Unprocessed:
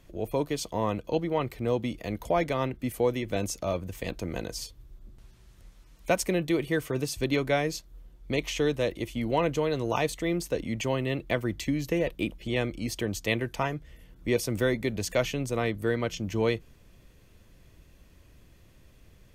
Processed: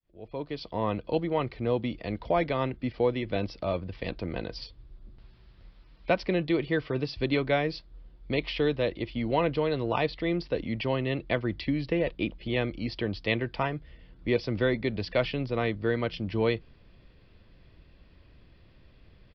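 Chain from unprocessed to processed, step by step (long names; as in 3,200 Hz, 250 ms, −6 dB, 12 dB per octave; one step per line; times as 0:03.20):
fade in at the beginning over 0.91 s
downsampling to 11,025 Hz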